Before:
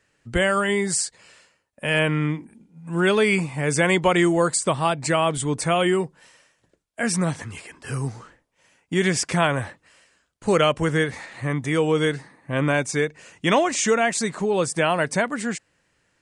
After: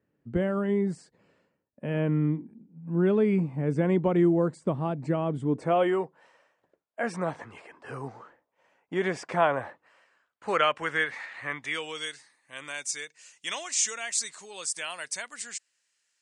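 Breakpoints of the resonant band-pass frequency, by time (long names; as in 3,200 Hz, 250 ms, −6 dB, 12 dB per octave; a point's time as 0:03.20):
resonant band-pass, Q 1
0:05.43 230 Hz
0:05.91 740 Hz
0:09.66 740 Hz
0:10.87 1,800 Hz
0:11.50 1,800 Hz
0:12.14 6,600 Hz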